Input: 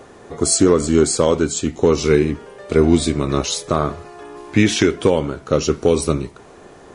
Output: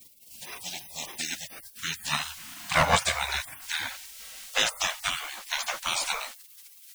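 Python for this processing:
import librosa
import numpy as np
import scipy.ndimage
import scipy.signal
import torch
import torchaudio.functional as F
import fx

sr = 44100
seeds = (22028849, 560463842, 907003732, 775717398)

y = fx.filter_sweep_highpass(x, sr, from_hz=1400.0, to_hz=72.0, start_s=1.07, end_s=4.89, q=3.4)
y = fx.quant_dither(y, sr, seeds[0], bits=8, dither='none')
y = fx.spec_gate(y, sr, threshold_db=-30, keep='weak')
y = F.gain(torch.from_numpy(y), 8.0).numpy()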